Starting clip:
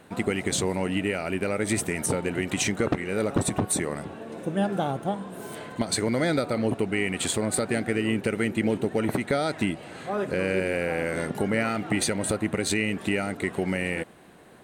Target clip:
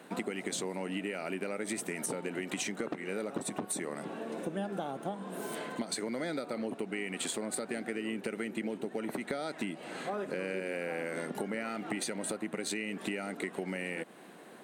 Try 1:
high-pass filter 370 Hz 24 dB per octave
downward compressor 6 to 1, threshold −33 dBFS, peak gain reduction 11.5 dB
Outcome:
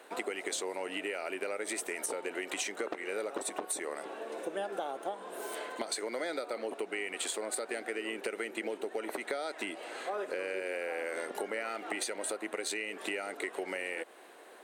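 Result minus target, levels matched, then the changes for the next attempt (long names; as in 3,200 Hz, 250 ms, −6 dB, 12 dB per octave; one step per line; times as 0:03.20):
250 Hz band −7.0 dB
change: high-pass filter 180 Hz 24 dB per octave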